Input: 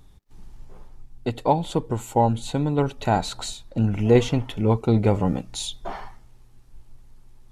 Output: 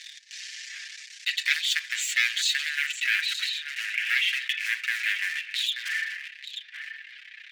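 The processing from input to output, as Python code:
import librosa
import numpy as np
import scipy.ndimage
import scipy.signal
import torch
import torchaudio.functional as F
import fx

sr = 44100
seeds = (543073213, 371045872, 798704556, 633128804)

y = np.minimum(x, 2.0 * 10.0 ** (-19.0 / 20.0) - x)
y = fx.lowpass(y, sr, hz=fx.steps((0.0, 6600.0), (2.75, 2800.0)), slope=24)
y = y + 10.0 ** (-18.0 / 20.0) * np.pad(y, (int(884 * sr / 1000.0), 0))[:len(y)]
y = fx.leveller(y, sr, passes=2)
y = scipy.signal.sosfilt(scipy.signal.cheby1(6, 1.0, 1700.0, 'highpass', fs=sr, output='sos'), y)
y = y + 0.65 * np.pad(y, (int(6.2 * sr / 1000.0), 0))[:len(y)]
y = fx.env_flatten(y, sr, amount_pct=50)
y = y * 10.0 ** (1.5 / 20.0)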